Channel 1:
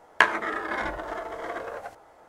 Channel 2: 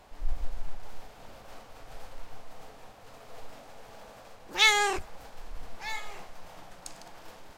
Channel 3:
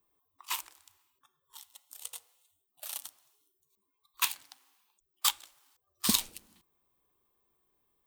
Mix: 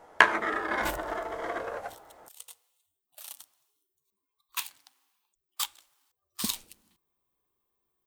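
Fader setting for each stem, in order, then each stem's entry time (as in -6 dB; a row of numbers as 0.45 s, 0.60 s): 0.0 dB, mute, -4.5 dB; 0.00 s, mute, 0.35 s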